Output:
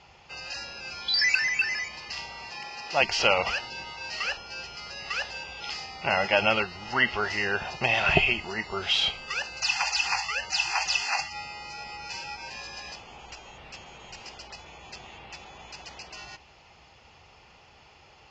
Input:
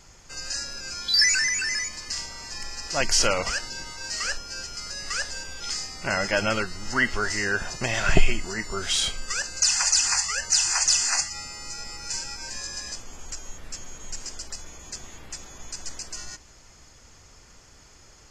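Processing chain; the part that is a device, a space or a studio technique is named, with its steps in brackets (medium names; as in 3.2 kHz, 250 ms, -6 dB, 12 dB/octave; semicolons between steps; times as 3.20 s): guitar cabinet (cabinet simulation 79–4300 Hz, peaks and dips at 110 Hz -4 dB, 190 Hz -3 dB, 280 Hz -8 dB, 810 Hz +9 dB, 1.6 kHz -5 dB, 2.7 kHz +9 dB); 2.50–3.02 s: high-pass 130 Hz 12 dB/octave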